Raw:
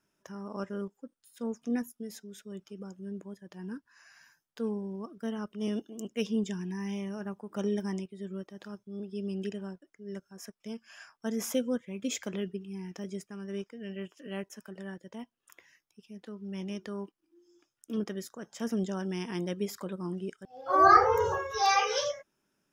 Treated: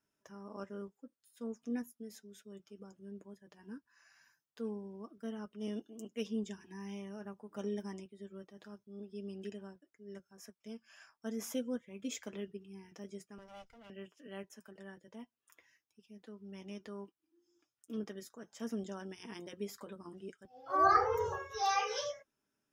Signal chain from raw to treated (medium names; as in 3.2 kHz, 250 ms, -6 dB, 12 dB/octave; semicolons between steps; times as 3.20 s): 13.38–13.90 s: comb filter that takes the minimum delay 1.4 ms; comb of notches 180 Hz; trim -6.5 dB